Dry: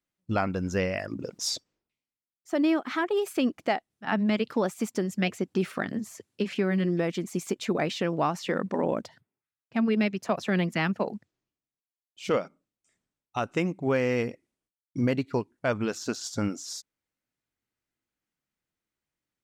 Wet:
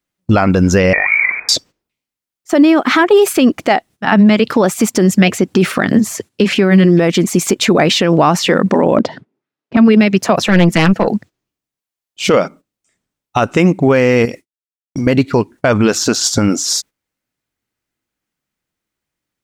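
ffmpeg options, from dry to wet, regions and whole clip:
ffmpeg -i in.wav -filter_complex "[0:a]asettb=1/sr,asplit=3[link_01][link_02][link_03];[link_01]atrim=end=0.934[link_04];[link_02]atrim=start=0.93:end=1.49,asetpts=PTS-STARTPTS,afade=type=in:duration=0.004:curve=qsin,afade=type=out:start_time=0.556:duration=0.004:curve=qsin,aeval=exprs='val(0)+0.5*0.015*sgn(val(0))':channel_layout=same,equalizer=frequency=1700:width=0.4:gain=-5,lowpass=frequency=2100:width_type=q:width=0.5098,lowpass=frequency=2100:width_type=q:width=0.6013,lowpass=frequency=2100:width_type=q:width=0.9,lowpass=frequency=2100:width_type=q:width=2.563,afreqshift=-2500[link_05];[link_03]atrim=start=1.486[link_06];[link_04][link_05]acrossfade=duration=0.004:curve1=hsin:curve2=qsin[link_07];[link_07][link_06]acrossfade=duration=0.004:curve1=qsin:curve2=hsin,asettb=1/sr,asplit=3[link_08][link_09][link_10];[link_08]atrim=end=8.974[link_11];[link_09]atrim=start=8.97:end=9.77,asetpts=PTS-STARTPTS,afade=type=in:duration=0.004:curve=qsin,afade=type=out:start_time=0.796:duration=0.004:curve=qsin,equalizer=frequency=300:width=0.5:gain=13.5,asoftclip=type=hard:threshold=-15dB,highpass=140,lowpass=4500[link_12];[link_10]atrim=start=9.766[link_13];[link_11][link_12]acrossfade=duration=0.004:curve1=hsin:curve2=qsin[link_14];[link_14][link_13]acrossfade=duration=0.004:curve1=qsin:curve2=hsin,asettb=1/sr,asplit=3[link_15][link_16][link_17];[link_15]atrim=end=10.464[link_18];[link_16]atrim=start=10.46:end=11.08,asetpts=PTS-STARTPTS,afade=type=in:duration=0.004:curve=qsin,afade=type=out:start_time=0.616:duration=0.004:curve=qsin,aecho=1:1:6:0.59,atrim=end_sample=27342,aeval=exprs='(tanh(10*val(0)+0.5)-tanh(0.5))/10':channel_layout=same[link_19];[link_17]atrim=start=11.076[link_20];[link_18][link_19]acrossfade=duration=0.004:curve1=hsin:curve2=qsin[link_21];[link_21][link_20]acrossfade=duration=0.004:curve1=qsin:curve2=hsin,asettb=1/sr,asplit=3[link_22][link_23][link_24];[link_22]atrim=end=14.254[link_25];[link_23]atrim=start=14.25:end=15.07,asetpts=PTS-STARTPTS,afade=type=in:duration=0.004:curve=qsin,afade=type=out:start_time=0.816:duration=0.004:curve=qsin,highshelf=frequency=2700:gain=10.5,agate=range=-33dB:threshold=-56dB:ratio=3:release=100:detection=peak,acompressor=threshold=-41dB:ratio=3:attack=3.2:release=140:knee=1:detection=peak[link_26];[link_24]atrim=start=15.066[link_27];[link_25][link_26]acrossfade=duration=0.004:curve1=hsin:curve2=qsin[link_28];[link_28][link_27]acrossfade=duration=0.004:curve1=qsin:curve2=hsin,agate=range=-13dB:threshold=-51dB:ratio=16:detection=peak,alimiter=level_in=22.5dB:limit=-1dB:release=50:level=0:latency=1,volume=-1dB" out.wav

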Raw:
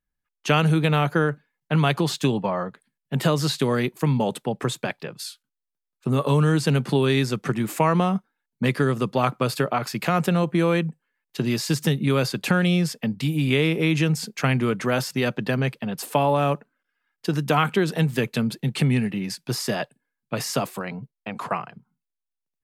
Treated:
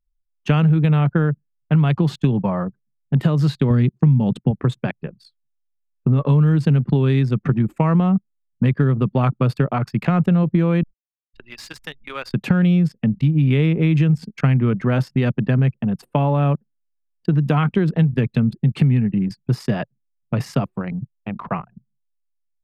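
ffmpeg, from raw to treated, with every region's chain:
ffmpeg -i in.wav -filter_complex "[0:a]asettb=1/sr,asplit=3[link_01][link_02][link_03];[link_01]atrim=end=3.704[link_04];[link_02]atrim=start=3.7:end=4.51,asetpts=PTS-STARTPTS,afade=type=in:duration=0.004:curve=qsin,afade=type=out:start_time=0.806:duration=0.004:curve=qsin,bass=frequency=250:gain=12,treble=frequency=4000:gain=12,acompressor=threshold=-16dB:ratio=1.5:attack=3.2:release=140:knee=1:detection=peak,highpass=120,lowpass=5300[link_05];[link_03]atrim=start=4.506[link_06];[link_04][link_05]acrossfade=duration=0.004:curve1=hsin:curve2=qsin[link_07];[link_07][link_06]acrossfade=duration=0.004:curve1=qsin:curve2=hsin,asettb=1/sr,asplit=3[link_08][link_09][link_10];[link_08]atrim=end=10.834[link_11];[link_09]atrim=start=10.83:end=12.34,asetpts=PTS-STARTPTS,afade=type=in:duration=0.004:curve=qsin,afade=type=out:start_time=1.506:duration=0.004:curve=qsin,highpass=930,acrusher=bits=8:dc=4:mix=0:aa=0.000001[link_12];[link_10]atrim=start=12.336[link_13];[link_11][link_12]acrossfade=duration=0.004:curve1=hsin:curve2=qsin[link_14];[link_14][link_13]acrossfade=duration=0.004:curve1=qsin:curve2=hsin,anlmdn=39.8,bass=frequency=250:gain=13,treble=frequency=4000:gain=-12,acompressor=threshold=-13dB:ratio=4" out.wav

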